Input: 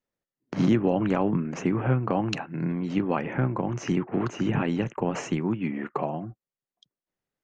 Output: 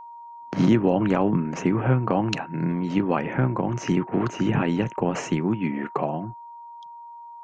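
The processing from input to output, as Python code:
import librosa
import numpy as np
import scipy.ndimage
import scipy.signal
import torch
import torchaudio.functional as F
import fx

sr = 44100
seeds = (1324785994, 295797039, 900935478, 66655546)

y = x + 10.0 ** (-42.0 / 20.0) * np.sin(2.0 * np.pi * 940.0 * np.arange(len(x)) / sr)
y = F.gain(torch.from_numpy(y), 3.0).numpy()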